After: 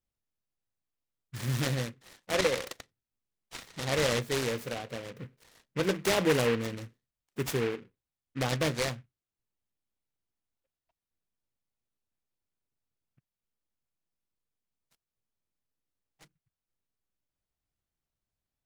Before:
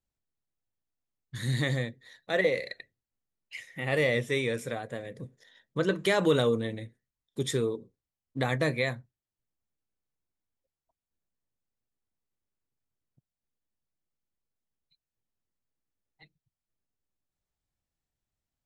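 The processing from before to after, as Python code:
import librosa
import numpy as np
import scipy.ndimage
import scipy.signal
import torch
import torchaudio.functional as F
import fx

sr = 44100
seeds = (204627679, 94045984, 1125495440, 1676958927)

y = fx.noise_mod_delay(x, sr, seeds[0], noise_hz=1700.0, depth_ms=0.12)
y = F.gain(torch.from_numpy(y), -1.5).numpy()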